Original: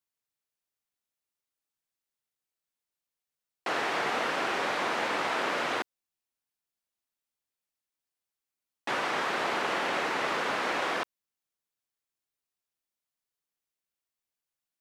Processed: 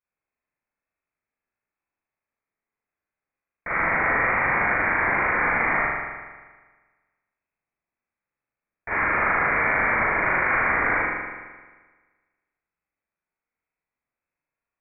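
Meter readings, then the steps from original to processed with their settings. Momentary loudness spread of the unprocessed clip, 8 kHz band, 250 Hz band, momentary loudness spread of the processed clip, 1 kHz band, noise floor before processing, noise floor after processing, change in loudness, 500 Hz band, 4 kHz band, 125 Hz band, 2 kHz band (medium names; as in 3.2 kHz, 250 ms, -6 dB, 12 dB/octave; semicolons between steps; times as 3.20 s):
5 LU, under -35 dB, +5.0 dB, 10 LU, +6.5 dB, under -85 dBFS, under -85 dBFS, +8.5 dB, +3.0 dB, under -25 dB, +14.0 dB, +11.5 dB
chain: spring tank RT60 1.4 s, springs 38 ms, chirp 20 ms, DRR -7.5 dB; frequency inversion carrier 2.6 kHz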